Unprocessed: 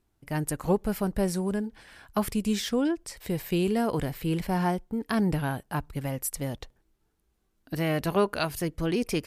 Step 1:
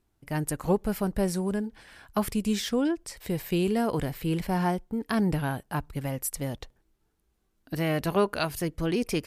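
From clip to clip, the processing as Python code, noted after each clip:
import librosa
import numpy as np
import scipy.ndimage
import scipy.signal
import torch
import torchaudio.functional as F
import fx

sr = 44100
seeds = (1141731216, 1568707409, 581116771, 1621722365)

y = x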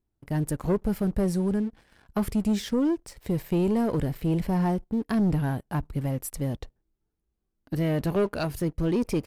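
y = fx.tilt_shelf(x, sr, db=5.0, hz=730.0)
y = fx.leveller(y, sr, passes=2)
y = y * 10.0 ** (-7.0 / 20.0)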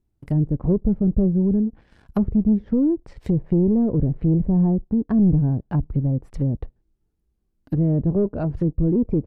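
y = fx.low_shelf(x, sr, hz=400.0, db=9.0)
y = fx.env_lowpass_down(y, sr, base_hz=500.0, full_db=-18.0)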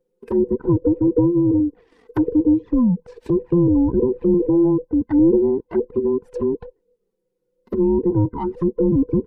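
y = fx.band_invert(x, sr, width_hz=500)
y = fx.env_flanger(y, sr, rest_ms=5.6, full_db=-16.0)
y = y * 10.0 ** (2.5 / 20.0)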